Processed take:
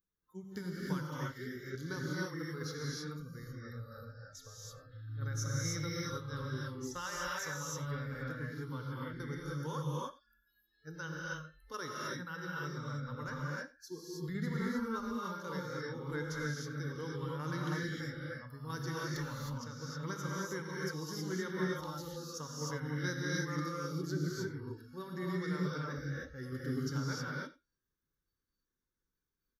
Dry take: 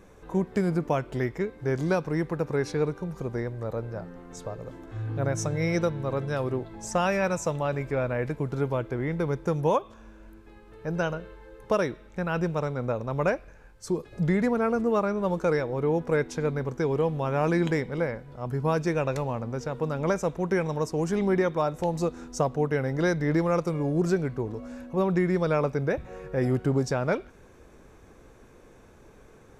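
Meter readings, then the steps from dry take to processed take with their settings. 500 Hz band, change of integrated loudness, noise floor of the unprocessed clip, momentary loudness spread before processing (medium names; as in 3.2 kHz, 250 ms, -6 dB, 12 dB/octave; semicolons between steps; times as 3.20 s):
-17.0 dB, -12.0 dB, -53 dBFS, 9 LU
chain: tremolo saw down 2.3 Hz, depth 50%; pre-emphasis filter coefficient 0.8; static phaser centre 2.5 kHz, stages 6; spectral noise reduction 28 dB; on a send: delay 90 ms -20 dB; on the sum: gated-style reverb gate 340 ms rising, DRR -4.5 dB; trim +1.5 dB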